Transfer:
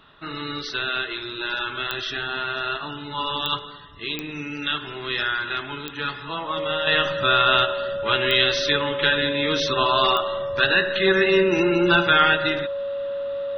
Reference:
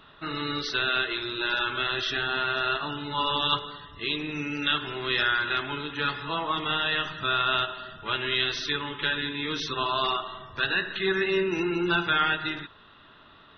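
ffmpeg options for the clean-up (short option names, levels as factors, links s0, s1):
-af "adeclick=t=4,bandreject=f=560:w=30,asetnsamples=n=441:p=0,asendcmd='6.87 volume volume -7dB',volume=1"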